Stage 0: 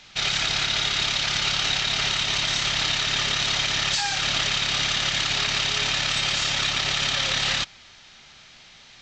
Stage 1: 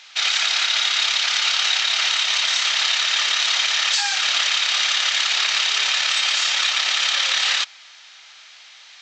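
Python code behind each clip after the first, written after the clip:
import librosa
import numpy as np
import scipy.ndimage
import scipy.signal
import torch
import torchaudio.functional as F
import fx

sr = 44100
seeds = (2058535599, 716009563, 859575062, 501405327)

y = scipy.signal.sosfilt(scipy.signal.butter(2, 950.0, 'highpass', fs=sr, output='sos'), x)
y = F.gain(torch.from_numpy(y), 4.5).numpy()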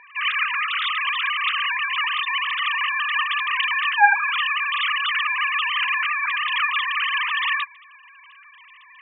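y = fx.sine_speech(x, sr)
y = fx.bandpass_q(y, sr, hz=820.0, q=0.51)
y = F.gain(torch.from_numpy(y), 1.0).numpy()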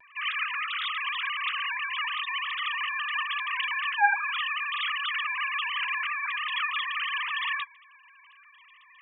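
y = fx.vibrato(x, sr, rate_hz=0.48, depth_cents=23.0)
y = fx.small_body(y, sr, hz=(650.0, 3300.0), ring_ms=85, db=9)
y = F.gain(torch.from_numpy(y), -7.5).numpy()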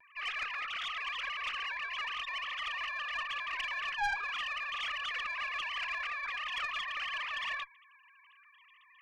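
y = fx.tube_stage(x, sr, drive_db=22.0, bias=0.4)
y = F.gain(torch.from_numpy(y), -5.0).numpy()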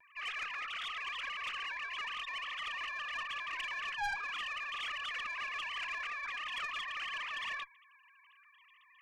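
y = 10.0 ** (-27.0 / 20.0) * np.tanh(x / 10.0 ** (-27.0 / 20.0))
y = F.gain(torch.from_numpy(y), -2.0).numpy()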